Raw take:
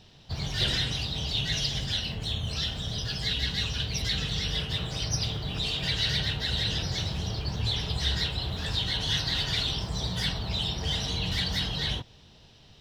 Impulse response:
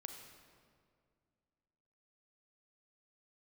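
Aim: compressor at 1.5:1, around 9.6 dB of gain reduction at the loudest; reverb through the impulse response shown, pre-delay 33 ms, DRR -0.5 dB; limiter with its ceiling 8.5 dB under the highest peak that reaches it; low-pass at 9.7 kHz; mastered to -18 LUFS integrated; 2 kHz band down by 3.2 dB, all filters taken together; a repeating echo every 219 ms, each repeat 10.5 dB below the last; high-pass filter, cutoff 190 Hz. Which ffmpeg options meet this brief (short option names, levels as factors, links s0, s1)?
-filter_complex "[0:a]highpass=190,lowpass=9700,equalizer=f=2000:t=o:g=-4,acompressor=threshold=0.002:ratio=1.5,alimiter=level_in=3.35:limit=0.0631:level=0:latency=1,volume=0.299,aecho=1:1:219|438|657:0.299|0.0896|0.0269,asplit=2[s0][s1];[1:a]atrim=start_sample=2205,adelay=33[s2];[s1][s2]afir=irnorm=-1:irlink=0,volume=1.68[s3];[s0][s3]amix=inputs=2:normalize=0,volume=10.6"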